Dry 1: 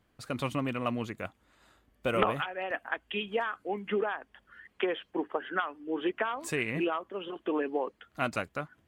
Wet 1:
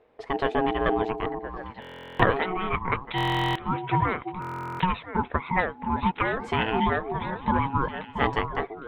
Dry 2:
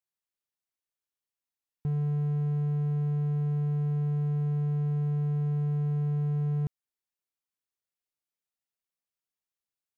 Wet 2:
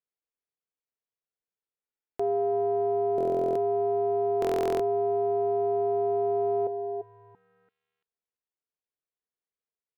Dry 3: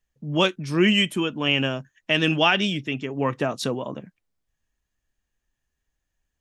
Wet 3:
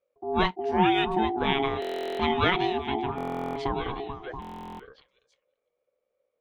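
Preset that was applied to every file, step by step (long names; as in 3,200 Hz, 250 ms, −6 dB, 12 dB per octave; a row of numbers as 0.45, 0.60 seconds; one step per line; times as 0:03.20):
on a send: echo through a band-pass that steps 339 ms, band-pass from 160 Hz, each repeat 1.4 octaves, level −3.5 dB
on the sum: harmonic generator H 6 −41 dB, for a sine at −4.5 dBFS
low-pass filter 2,500 Hz 12 dB per octave
ring modulation 550 Hz
parametric band 460 Hz +10 dB 0.42 octaves
buffer that repeats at 0:01.80/0:03.16/0:04.40, samples 1,024, times 16
loudness normalisation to −27 LKFS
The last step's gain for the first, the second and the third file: +8.5, −1.0, −1.0 decibels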